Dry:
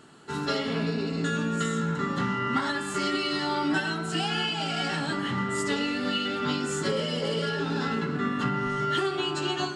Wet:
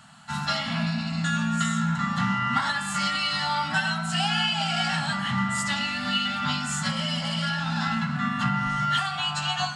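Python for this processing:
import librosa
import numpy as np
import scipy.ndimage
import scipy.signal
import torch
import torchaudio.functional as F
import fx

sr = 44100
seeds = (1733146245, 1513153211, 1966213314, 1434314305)

y = scipy.signal.sosfilt(scipy.signal.cheby1(3, 1.0, [220.0, 680.0], 'bandstop', fs=sr, output='sos'), x)
y = F.gain(torch.from_numpy(y), 4.5).numpy()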